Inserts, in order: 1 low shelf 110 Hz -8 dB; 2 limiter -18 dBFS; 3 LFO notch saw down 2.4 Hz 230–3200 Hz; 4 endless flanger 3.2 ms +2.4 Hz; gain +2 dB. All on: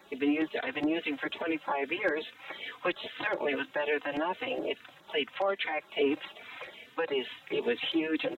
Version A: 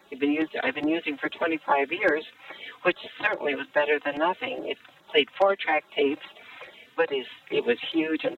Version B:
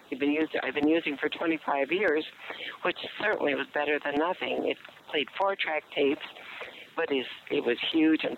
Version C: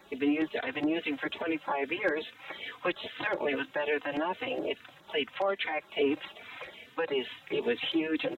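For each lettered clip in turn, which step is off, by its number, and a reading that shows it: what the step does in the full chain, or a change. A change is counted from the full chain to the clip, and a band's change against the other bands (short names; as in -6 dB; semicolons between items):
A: 2, mean gain reduction 2.5 dB; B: 4, momentary loudness spread change +1 LU; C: 1, 125 Hz band +2.5 dB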